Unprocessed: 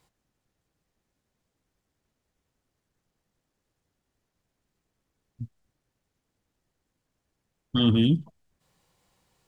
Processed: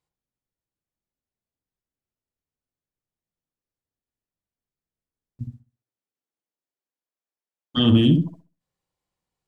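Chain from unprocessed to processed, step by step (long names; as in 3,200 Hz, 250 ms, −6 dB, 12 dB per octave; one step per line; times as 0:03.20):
0:05.43–0:07.76: high-pass filter 180 Hz → 590 Hz 12 dB per octave
noise gate with hold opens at −53 dBFS
feedback echo with a low-pass in the loop 64 ms, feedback 27%, low-pass 950 Hz, level −3.5 dB
level +4 dB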